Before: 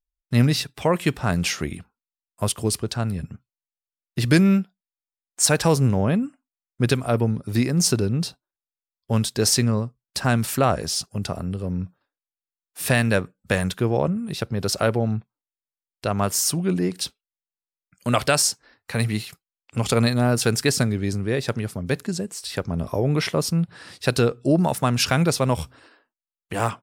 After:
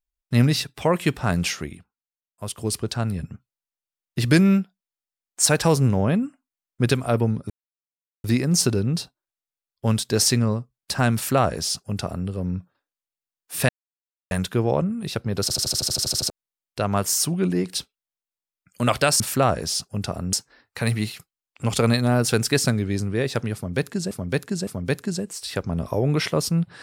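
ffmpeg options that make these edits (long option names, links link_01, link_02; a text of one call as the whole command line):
ffmpeg -i in.wav -filter_complex "[0:a]asplit=21[link_01][link_02][link_03][link_04][link_05][link_06][link_07][link_08][link_09][link_10][link_11][link_12][link_13][link_14][link_15][link_16][link_17][link_18][link_19][link_20][link_21];[link_01]atrim=end=1.89,asetpts=PTS-STARTPTS,afade=type=out:start_time=1.4:duration=0.49:silence=0.211349[link_22];[link_02]atrim=start=1.89:end=2.36,asetpts=PTS-STARTPTS,volume=-13.5dB[link_23];[link_03]atrim=start=2.36:end=7.5,asetpts=PTS-STARTPTS,afade=type=in:duration=0.49:silence=0.211349,afade=type=out:start_time=5.136:duration=0.004:curve=hsin,apad=pad_dur=0.74[link_24];[link_04]atrim=start=7.5:end=12.95,asetpts=PTS-STARTPTS,afade=type=in:duration=0.004:curve=hsin,afade=type=out:start_time=5.446:duration=0.004:curve=hsin[link_25];[link_05]atrim=start=12.95:end=13.57,asetpts=PTS-STARTPTS,volume=0[link_26];[link_06]atrim=start=13.57:end=14.762,asetpts=PTS-STARTPTS,afade=type=in:duration=0.004:curve=hsin[link_27];[link_07]atrim=start=14.678:end=14.762[link_28];[link_08]atrim=start=14.678:end=14.762[link_29];[link_09]atrim=start=14.678:end=14.762[link_30];[link_10]atrim=start=14.678:end=14.762[link_31];[link_11]atrim=start=14.678:end=14.762[link_32];[link_12]atrim=start=14.678:end=14.762[link_33];[link_13]atrim=start=14.678:end=14.762[link_34];[link_14]atrim=start=14.678:end=14.762[link_35];[link_15]atrim=start=14.678:end=14.762[link_36];[link_16]atrim=start=14.678:end=14.762[link_37];[link_17]atrim=start=15.558:end=18.462[link_38];[link_18]atrim=start=10.408:end=11.542[link_39];[link_19]atrim=start=18.458:end=22.242[link_40];[link_20]atrim=start=21.678:end=22.242[link_41];[link_21]atrim=start=21.678[link_42];[link_22][link_23][link_24][link_25][link_26][link_27]concat=n=6:v=0:a=1[link_43];[link_43][link_28]acrossfade=duration=0.004:curve1=hsin:curve2=hsin[link_44];[link_44][link_29]acrossfade=duration=0.004:curve1=hsin:curve2=hsin[link_45];[link_45][link_30]acrossfade=duration=0.004:curve1=hsin:curve2=hsin[link_46];[link_46][link_31]acrossfade=duration=0.004:curve1=hsin:curve2=hsin[link_47];[link_47][link_32]acrossfade=duration=0.004:curve1=hsin:curve2=hsin[link_48];[link_48][link_33]acrossfade=duration=0.004:curve1=hsin:curve2=hsin[link_49];[link_49][link_34]acrossfade=duration=0.004:curve1=hsin:curve2=hsin[link_50];[link_50][link_35]acrossfade=duration=0.004:curve1=hsin:curve2=hsin[link_51];[link_51][link_36]acrossfade=duration=0.004:curve1=hsin:curve2=hsin[link_52];[link_52][link_37]acrossfade=duration=0.004:curve1=hsin:curve2=hsin[link_53];[link_53][link_38]acrossfade=duration=0.004:curve1=hsin:curve2=hsin[link_54];[link_54][link_39]acrossfade=duration=0.004:curve1=hsin:curve2=hsin[link_55];[link_55][link_40]acrossfade=duration=0.004:curve1=hsin:curve2=hsin[link_56];[link_56][link_41]acrossfade=duration=0.004:curve1=hsin:curve2=hsin[link_57];[link_57][link_42]acrossfade=duration=0.004:curve1=hsin:curve2=hsin" out.wav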